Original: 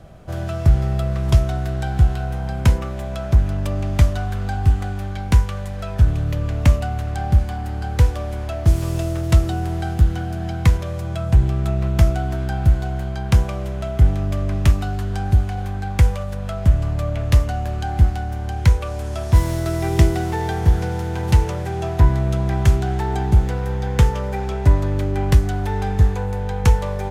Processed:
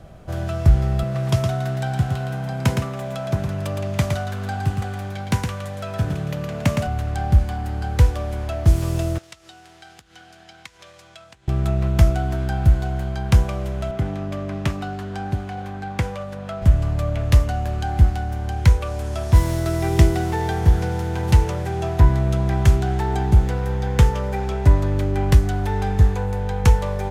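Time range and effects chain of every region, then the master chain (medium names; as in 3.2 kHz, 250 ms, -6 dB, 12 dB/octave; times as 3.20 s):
1.03–6.87 s: high-pass 110 Hz 24 dB/octave + delay 114 ms -5 dB
9.18–11.48 s: treble shelf 6.6 kHz -8.5 dB + compression 12:1, threshold -22 dBFS + band-pass filter 5.6 kHz, Q 0.58
13.91–16.62 s: high-pass 150 Hz + treble shelf 6.3 kHz -10.5 dB
whole clip: none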